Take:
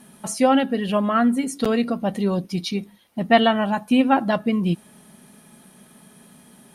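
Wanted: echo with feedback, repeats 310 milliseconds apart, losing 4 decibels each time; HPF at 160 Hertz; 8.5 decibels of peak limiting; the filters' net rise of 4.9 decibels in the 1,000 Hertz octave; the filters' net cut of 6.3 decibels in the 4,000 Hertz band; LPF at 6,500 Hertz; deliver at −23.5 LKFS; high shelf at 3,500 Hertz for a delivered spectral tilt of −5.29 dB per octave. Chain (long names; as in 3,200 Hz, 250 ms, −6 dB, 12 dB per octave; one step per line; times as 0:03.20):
high-pass filter 160 Hz
low-pass filter 6,500 Hz
parametric band 1,000 Hz +8 dB
high-shelf EQ 3,500 Hz −6.5 dB
parametric band 4,000 Hz −6 dB
brickwall limiter −9 dBFS
repeating echo 310 ms, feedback 63%, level −4 dB
level −3.5 dB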